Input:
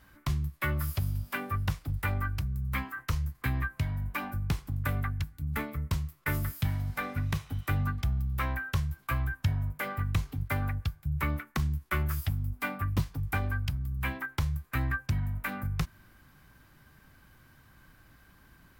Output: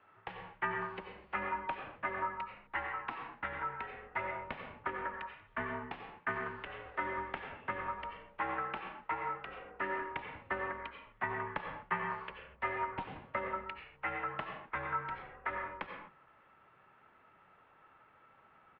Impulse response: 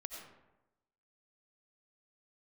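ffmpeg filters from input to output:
-filter_complex "[0:a]asetrate=41625,aresample=44100,atempo=1.05946[a];[1:a]atrim=start_sample=2205,afade=t=out:st=0.31:d=0.01,atrim=end_sample=14112[b];[a][b]afir=irnorm=-1:irlink=0,highpass=f=350:t=q:w=0.5412,highpass=f=350:t=q:w=1.307,lowpass=f=3k:t=q:w=0.5176,lowpass=f=3k:t=q:w=0.7071,lowpass=f=3k:t=q:w=1.932,afreqshift=-170,volume=3dB"

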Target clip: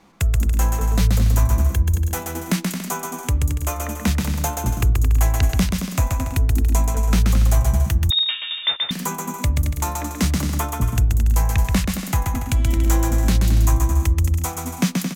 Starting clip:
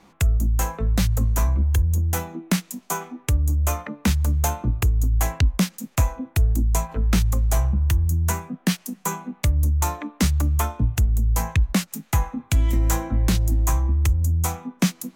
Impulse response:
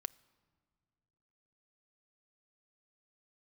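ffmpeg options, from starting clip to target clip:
-filter_complex "[0:a]aecho=1:1:130|221|284.7|329.3|360.5:0.631|0.398|0.251|0.158|0.1,asettb=1/sr,asplit=3[a][b][c];[a]atrim=end=8.104[d];[b]atrim=start=8.1:end=8.91,asetpts=PTS-STARTPTS,afade=t=in:d=0.004:c=qsin,afade=t=out:st=0.806:d=0.004:c=qsin,lowpass=f=3.2k:t=q:w=0.5098,lowpass=f=3.2k:t=q:w=0.6013,lowpass=f=3.2k:t=q:w=0.9,lowpass=f=3.2k:t=q:w=2.563,afreqshift=-3800[e];[c]atrim=start=8.906[f];[d][e]acrossfade=d=0.004:c1=hsin:c2=qsin[g];[g][f]acrossfade=d=0.004:c1=qsin:c2=hsin"

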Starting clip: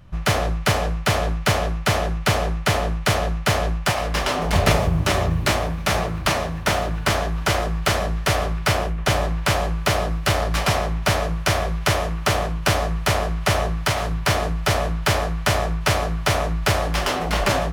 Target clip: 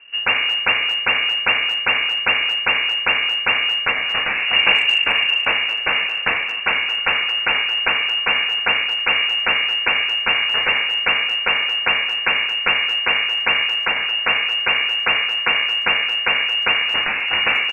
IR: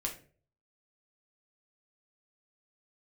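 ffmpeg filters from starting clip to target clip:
-filter_complex "[0:a]lowpass=f=2.5k:t=q:w=0.5098,lowpass=f=2.5k:t=q:w=0.6013,lowpass=f=2.5k:t=q:w=0.9,lowpass=f=2.5k:t=q:w=2.563,afreqshift=-2900,asplit=2[a][b];[b]adelay=220,highpass=300,lowpass=3.4k,asoftclip=type=hard:threshold=-13.5dB,volume=-14dB[c];[a][c]amix=inputs=2:normalize=0,volume=2dB"

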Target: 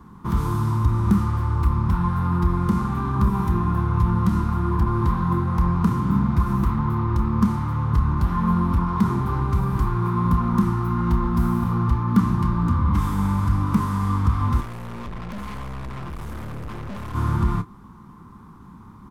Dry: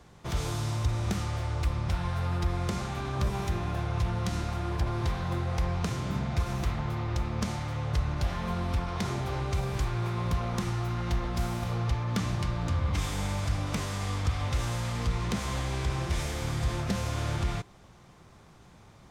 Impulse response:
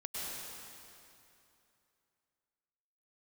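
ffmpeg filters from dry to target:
-filter_complex "[0:a]firequalizer=gain_entry='entry(140,0);entry(210,9);entry(620,-19);entry(990,7);entry(1700,-8);entry(2400,-14);entry(6700,-16);entry(12000,-3)':delay=0.05:min_phase=1,asplit=3[a][b][c];[a]afade=t=out:st=14.6:d=0.02[d];[b]aeval=exprs='(tanh(100*val(0)+0.55)-tanh(0.55))/100':c=same,afade=t=in:st=14.6:d=0.02,afade=t=out:st=17.14:d=0.02[e];[c]afade=t=in:st=17.14:d=0.02[f];[d][e][f]amix=inputs=3:normalize=0,asplit=2[g][h];[h]adelay=29,volume=-12dB[i];[g][i]amix=inputs=2:normalize=0,volume=8dB"

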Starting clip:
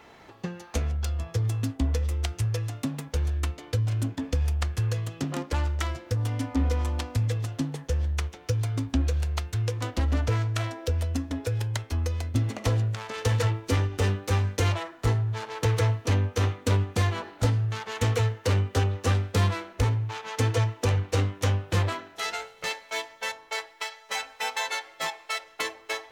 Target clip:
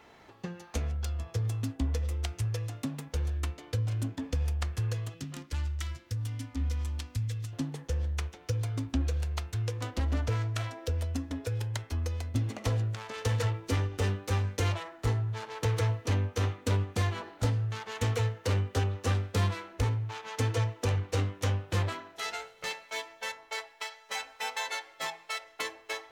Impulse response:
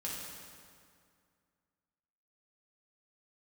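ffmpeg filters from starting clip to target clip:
-filter_complex "[0:a]asettb=1/sr,asplit=3[a][b][c];[a]atrim=end=5.144[d];[b]atrim=start=5.14:end=7.53,asetpts=PTS-STARTPTS,afade=t=in:d=0.004:c=qsin,afade=t=out:st=2.386:d=0.004:c=qsin,equalizer=f=610:w=0.52:g=-14[e];[c]atrim=start=7.526[f];[d][e]acrossfade=d=0.004:c1=hsin:c2=qsin[g];[g][f]acrossfade=d=0.004:c1=qsin:c2=hsin,bandreject=f=166.5:t=h:w=4,bandreject=f=333:t=h:w=4,bandreject=f=499.5:t=h:w=4,bandreject=f=666:t=h:w=4,bandreject=f=832.5:t=h:w=4,bandreject=f=999:t=h:w=4,bandreject=f=1.1655k:t=h:w=4,bandreject=f=1.332k:t=h:w=4,bandreject=f=1.4985k:t=h:w=4,bandreject=f=1.665k:t=h:w=4,bandreject=f=1.8315k:t=h:w=4,bandreject=f=1.998k:t=h:w=4,bandreject=f=2.1645k:t=h:w=4,bandreject=f=2.331k:t=h:w=4,bandreject=f=2.4975k:t=h:w=4,bandreject=f=2.664k:t=h:w=4,volume=-4.5dB"

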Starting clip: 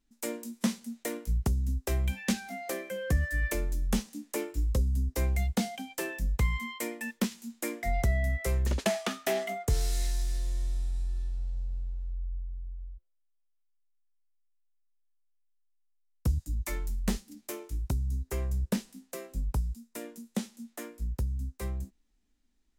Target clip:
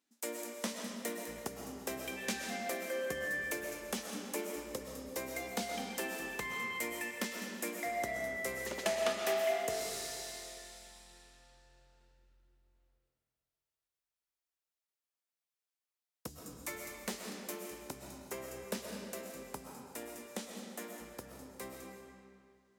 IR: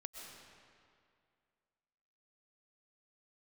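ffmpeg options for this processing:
-filter_complex "[0:a]highpass=360,asplit=2[a][b];[b]acompressor=threshold=-46dB:ratio=6,volume=-3dB[c];[a][c]amix=inputs=2:normalize=0[d];[1:a]atrim=start_sample=2205[e];[d][e]afir=irnorm=-1:irlink=0,volume=1dB"

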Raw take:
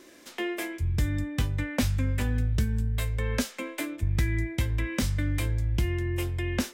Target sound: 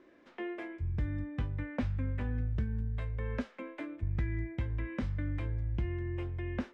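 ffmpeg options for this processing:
-af "lowpass=1.8k,volume=-7dB"

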